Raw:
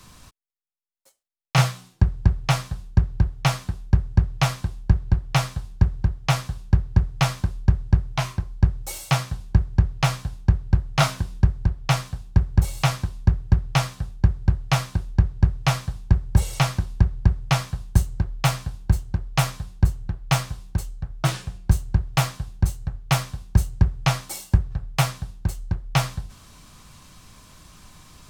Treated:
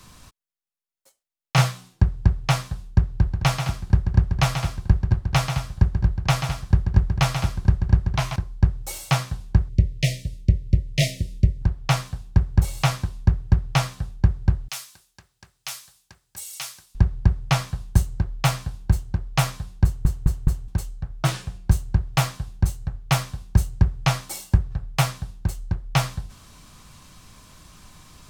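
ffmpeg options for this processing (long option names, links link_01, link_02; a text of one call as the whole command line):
ffmpeg -i in.wav -filter_complex "[0:a]asettb=1/sr,asplit=3[link_01][link_02][link_03];[link_01]atrim=end=3.094[link_04];[link_02]atrim=start=3.09:end=8.36,asetpts=PTS-STARTPTS,afade=type=in:duration=0.004:curve=qsin,afade=type=out:start_time=5.266:duration=0.004:curve=qsin,aecho=1:1:136|213:0.422|0.282,atrim=end_sample=232407[link_05];[link_03]atrim=start=8.356[link_06];[link_04][link_05]acrossfade=duration=0.004:curve1=hsin:curve2=qsin[link_07];[link_07][link_06]acrossfade=duration=0.004:curve1=qsin:curve2=hsin,asettb=1/sr,asplit=3[link_08][link_09][link_10];[link_08]atrim=end=9.694[link_11];[link_09]atrim=start=9.69:end=11.62,asetpts=PTS-STARTPTS,afade=type=in:duration=0.004:curve=qsin,afade=type=out:start_time=1.926:duration=0.004:curve=qsin,asuperstop=centerf=1100:order=20:qfactor=0.92[link_12];[link_10]atrim=start=11.616[link_13];[link_11][link_12]acrossfade=duration=0.004:curve1=hsin:curve2=qsin[link_14];[link_14][link_13]acrossfade=duration=0.004:curve1=qsin:curve2=hsin,asettb=1/sr,asplit=3[link_15][link_16][link_17];[link_15]atrim=end=14.684[link_18];[link_16]atrim=start=14.68:end=16.95,asetpts=PTS-STARTPTS,afade=type=in:duration=0.004:curve=qsin,afade=type=out:start_time=2.266:duration=0.004:curve=qsin,aderivative[link_19];[link_17]atrim=start=16.946[link_20];[link_18][link_19]acrossfade=duration=0.004:curve1=hsin:curve2=qsin[link_21];[link_21][link_20]acrossfade=duration=0.004:curve1=qsin:curve2=hsin,asplit=5[link_22][link_23][link_24][link_25][link_26];[link_22]atrim=end=20.052[link_27];[link_23]atrim=start=19.838:end=20.052[link_28];[link_24]atrim=start=19.838:end=20.052[link_29];[link_25]atrim=start=19.838:end=20.052[link_30];[link_26]atrim=start=20.678[link_31];[link_27][link_28]acrossfade=duration=0.004:curve1=hsin:curve2=hsin[link_32];[link_32][link_29]acrossfade=duration=0.004:curve1=hsin:curve2=hsin[link_33];[link_33][link_30]acrossfade=duration=0.004:curve1=hsin:curve2=hsin[link_34];[link_34][link_31]acrossfade=duration=0.004:curve1=hsin:curve2=hsin" out.wav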